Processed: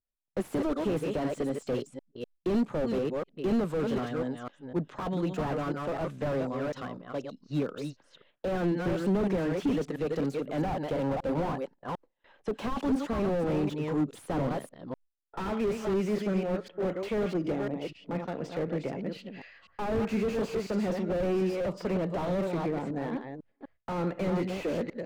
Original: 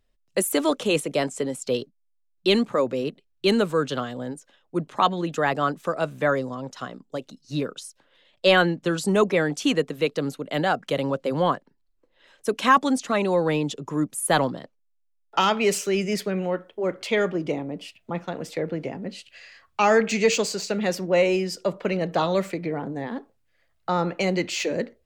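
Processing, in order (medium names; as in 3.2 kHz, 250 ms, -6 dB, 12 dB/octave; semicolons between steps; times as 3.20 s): chunks repeated in reverse 249 ms, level -7.5 dB; 10.61–12.86 s: peaking EQ 830 Hz +7 dB 0.57 oct; gate with hold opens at -44 dBFS; peaking EQ 10 kHz -5.5 dB 2.6 oct; level-controlled noise filter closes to 2.7 kHz, open at -21 dBFS; slew-rate limiter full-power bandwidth 28 Hz; trim -2.5 dB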